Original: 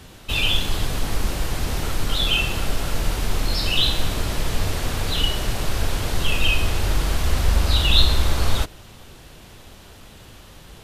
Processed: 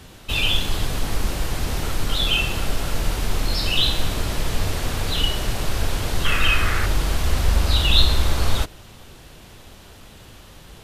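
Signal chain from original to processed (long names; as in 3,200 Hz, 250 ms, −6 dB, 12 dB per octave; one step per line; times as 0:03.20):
0:06.25–0:06.86: flat-topped bell 1,600 Hz +11 dB 1.1 octaves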